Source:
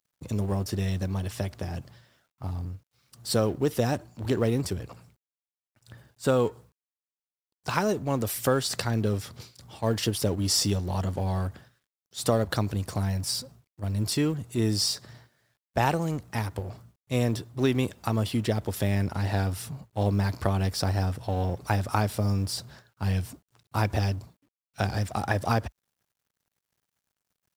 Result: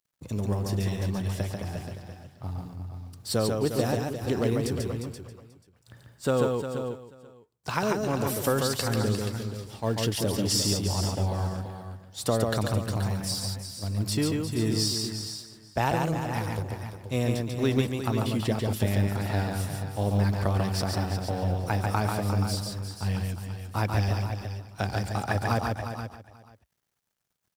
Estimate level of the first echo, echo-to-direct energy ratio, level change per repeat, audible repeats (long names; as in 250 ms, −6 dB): −3.5 dB, −1.5 dB, repeats not evenly spaced, 6